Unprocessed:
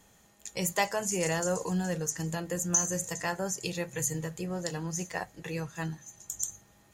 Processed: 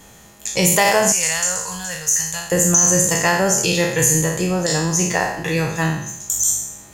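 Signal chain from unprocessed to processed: spectral trails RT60 0.75 s; 1.12–2.52 passive tone stack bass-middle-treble 10-0-10; maximiser +17.5 dB; gain -3.5 dB

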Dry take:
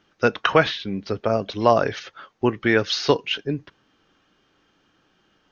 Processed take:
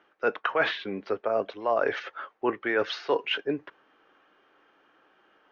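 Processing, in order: three-band isolator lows -22 dB, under 340 Hz, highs -20 dB, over 2500 Hz; reverse; compressor 6:1, threshold -27 dBFS, peak gain reduction 14.5 dB; reverse; gain +4.5 dB

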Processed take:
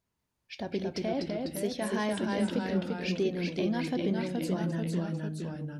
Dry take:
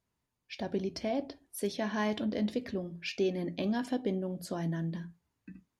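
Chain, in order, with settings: echoes that change speed 0.19 s, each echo -1 st, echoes 3

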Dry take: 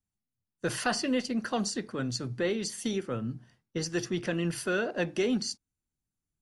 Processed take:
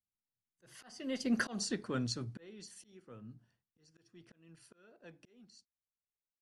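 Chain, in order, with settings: Doppler pass-by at 1.58, 12 m/s, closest 1.7 m; auto swell 0.578 s; gain +7.5 dB

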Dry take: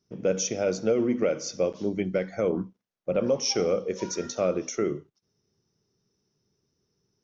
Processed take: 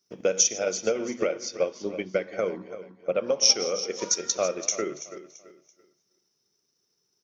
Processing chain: regenerating reverse delay 0.162 s, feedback 44%, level -12.5 dB; HPF 670 Hz 6 dB/oct; high shelf 4900 Hz +9 dB; transient shaper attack +7 dB, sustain -2 dB; 1.27–3.41 air absorption 130 m; feedback echo 0.335 s, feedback 32%, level -14.5 dB

